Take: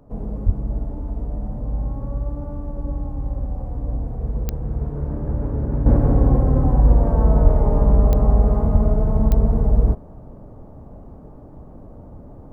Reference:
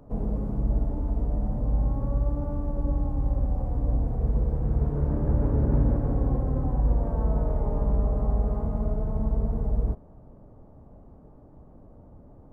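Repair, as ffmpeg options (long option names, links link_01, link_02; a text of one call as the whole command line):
ffmpeg -i in.wav -filter_complex "[0:a]adeclick=threshold=4,asplit=3[link_01][link_02][link_03];[link_01]afade=type=out:start_time=0.45:duration=0.02[link_04];[link_02]highpass=frequency=140:width=0.5412,highpass=frequency=140:width=1.3066,afade=type=in:start_time=0.45:duration=0.02,afade=type=out:start_time=0.57:duration=0.02[link_05];[link_03]afade=type=in:start_time=0.57:duration=0.02[link_06];[link_04][link_05][link_06]amix=inputs=3:normalize=0,asplit=3[link_07][link_08][link_09];[link_07]afade=type=out:start_time=7.43:duration=0.02[link_10];[link_08]highpass=frequency=140:width=0.5412,highpass=frequency=140:width=1.3066,afade=type=in:start_time=7.43:duration=0.02,afade=type=out:start_time=7.55:duration=0.02[link_11];[link_09]afade=type=in:start_time=7.55:duration=0.02[link_12];[link_10][link_11][link_12]amix=inputs=3:normalize=0,asplit=3[link_13][link_14][link_15];[link_13]afade=type=out:start_time=8.72:duration=0.02[link_16];[link_14]highpass=frequency=140:width=0.5412,highpass=frequency=140:width=1.3066,afade=type=in:start_time=8.72:duration=0.02,afade=type=out:start_time=8.84:duration=0.02[link_17];[link_15]afade=type=in:start_time=8.84:duration=0.02[link_18];[link_16][link_17][link_18]amix=inputs=3:normalize=0,asetnsamples=nb_out_samples=441:pad=0,asendcmd='5.86 volume volume -9.5dB',volume=0dB" out.wav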